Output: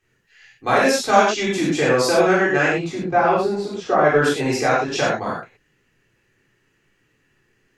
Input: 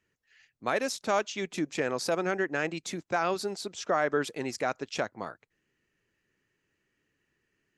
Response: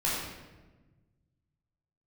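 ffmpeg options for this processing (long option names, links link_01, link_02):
-filter_complex "[0:a]asettb=1/sr,asplit=3[link_01][link_02][link_03];[link_01]atrim=end=2.724[link_04];[link_02]atrim=start=2.72:end=4.05,asetpts=PTS-STARTPTS,afade=type=in:duration=0.004:curve=qsin,afade=type=out:start_time=1.326:duration=0.004:curve=qsin,lowpass=frequency=1200:poles=1[link_05];[link_03]atrim=start=4.046[link_06];[link_04][link_05]acrossfade=duration=0.004:curve1=hsin:curve2=qsin[link_07];[link_07][link_06]acrossfade=duration=0.004:curve1=qsin:curve2=hsin[link_08];[1:a]atrim=start_sample=2205,afade=type=out:start_time=0.15:duration=0.01,atrim=end_sample=7056,asetrate=34398,aresample=44100[link_09];[link_08][link_09]afir=irnorm=-1:irlink=0,volume=3.5dB"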